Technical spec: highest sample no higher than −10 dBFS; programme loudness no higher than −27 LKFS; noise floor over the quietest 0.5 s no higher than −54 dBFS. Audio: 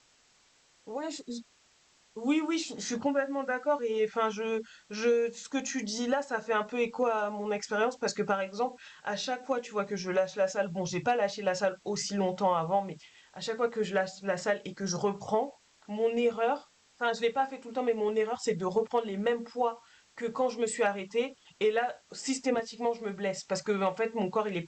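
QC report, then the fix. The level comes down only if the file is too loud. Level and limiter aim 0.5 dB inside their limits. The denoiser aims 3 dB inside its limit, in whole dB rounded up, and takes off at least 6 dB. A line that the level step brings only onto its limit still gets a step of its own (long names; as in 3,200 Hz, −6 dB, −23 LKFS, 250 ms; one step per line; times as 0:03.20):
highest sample −17.0 dBFS: in spec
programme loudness −31.5 LKFS: in spec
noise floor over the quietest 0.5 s −65 dBFS: in spec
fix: no processing needed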